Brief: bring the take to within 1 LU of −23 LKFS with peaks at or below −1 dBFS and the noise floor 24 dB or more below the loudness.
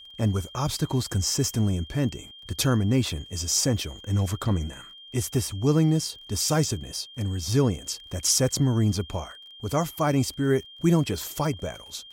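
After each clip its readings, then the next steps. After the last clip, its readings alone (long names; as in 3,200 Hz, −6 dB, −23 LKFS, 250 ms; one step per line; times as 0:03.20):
crackle rate 25 per second; interfering tone 3,200 Hz; level of the tone −44 dBFS; integrated loudness −25.5 LKFS; sample peak −9.5 dBFS; target loudness −23.0 LKFS
→ click removal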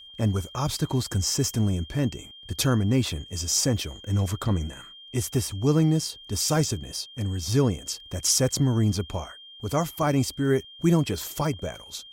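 crackle rate 0.082 per second; interfering tone 3,200 Hz; level of the tone −44 dBFS
→ notch filter 3,200 Hz, Q 30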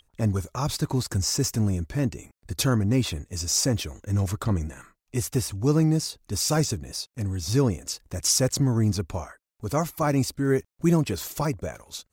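interfering tone none found; integrated loudness −25.5 LKFS; sample peak −10.0 dBFS; target loudness −23.0 LKFS
→ level +2.5 dB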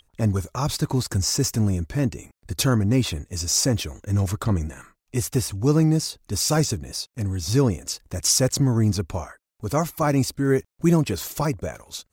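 integrated loudness −23.0 LKFS; sample peak −7.5 dBFS; background noise floor −77 dBFS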